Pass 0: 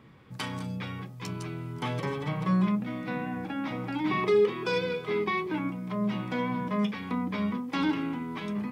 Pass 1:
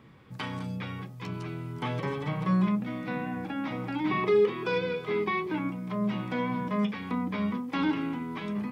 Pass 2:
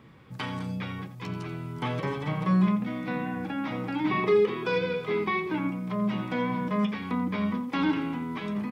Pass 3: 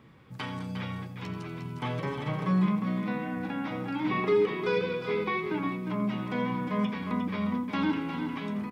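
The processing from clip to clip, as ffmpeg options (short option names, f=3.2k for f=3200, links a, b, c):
-filter_complex "[0:a]acrossover=split=3900[a][b];[b]acompressor=threshold=-56dB:ratio=4:attack=1:release=60[c];[a][c]amix=inputs=2:normalize=0"
-af "aecho=1:1:86:0.224,volume=1.5dB"
-af "aecho=1:1:356:0.422,volume=-2.5dB"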